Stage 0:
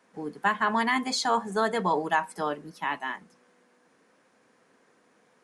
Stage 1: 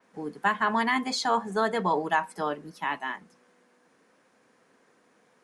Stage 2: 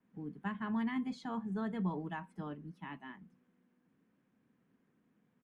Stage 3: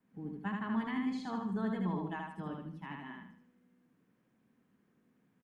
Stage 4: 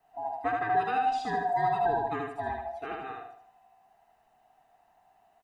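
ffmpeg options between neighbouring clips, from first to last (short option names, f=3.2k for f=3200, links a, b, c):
-af "adynamicequalizer=threshold=0.00251:dfrequency=9200:dqfactor=0.81:tfrequency=9200:tqfactor=0.81:attack=5:release=100:ratio=0.375:range=2.5:mode=cutabove:tftype=bell"
-af "firequalizer=gain_entry='entry(180,0);entry(490,-19);entry(3100,-17);entry(4500,-27)':delay=0.05:min_phase=1"
-af "aecho=1:1:77|154|231|308|385:0.708|0.276|0.108|0.042|0.0164"
-af "afftfilt=real='real(if(lt(b,1008),b+24*(1-2*mod(floor(b/24),2)),b),0)':imag='imag(if(lt(b,1008),b+24*(1-2*mod(floor(b/24),2)),b),0)':win_size=2048:overlap=0.75,volume=7.5dB"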